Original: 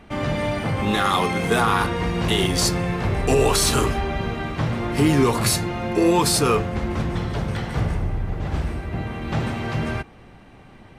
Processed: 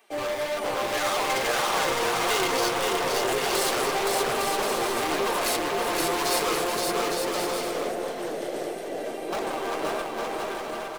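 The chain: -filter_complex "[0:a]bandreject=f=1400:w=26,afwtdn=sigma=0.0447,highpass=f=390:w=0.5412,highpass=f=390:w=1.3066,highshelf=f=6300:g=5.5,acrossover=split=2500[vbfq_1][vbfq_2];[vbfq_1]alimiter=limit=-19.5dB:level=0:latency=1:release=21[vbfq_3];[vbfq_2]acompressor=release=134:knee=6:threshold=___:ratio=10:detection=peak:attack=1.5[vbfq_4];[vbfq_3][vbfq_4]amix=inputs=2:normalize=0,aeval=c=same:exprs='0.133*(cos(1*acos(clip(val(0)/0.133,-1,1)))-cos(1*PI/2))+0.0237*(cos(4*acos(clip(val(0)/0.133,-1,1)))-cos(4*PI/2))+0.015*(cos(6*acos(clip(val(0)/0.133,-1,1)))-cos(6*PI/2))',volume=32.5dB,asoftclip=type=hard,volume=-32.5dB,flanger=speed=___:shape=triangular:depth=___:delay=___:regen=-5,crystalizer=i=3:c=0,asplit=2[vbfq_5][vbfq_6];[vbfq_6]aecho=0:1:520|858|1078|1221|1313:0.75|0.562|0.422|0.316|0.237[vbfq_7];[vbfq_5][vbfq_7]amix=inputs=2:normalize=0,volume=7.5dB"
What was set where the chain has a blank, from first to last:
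-41dB, 1.7, 4.6, 4.2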